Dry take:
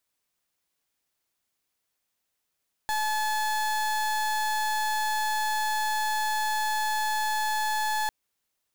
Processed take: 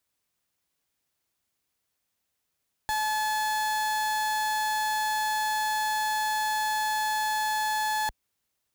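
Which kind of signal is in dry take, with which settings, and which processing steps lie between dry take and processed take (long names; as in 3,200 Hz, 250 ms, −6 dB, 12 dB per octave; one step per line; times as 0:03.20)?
pulse wave 860 Hz, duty 31% −27 dBFS 5.20 s
high-pass filter 41 Hz
low-shelf EQ 160 Hz +7.5 dB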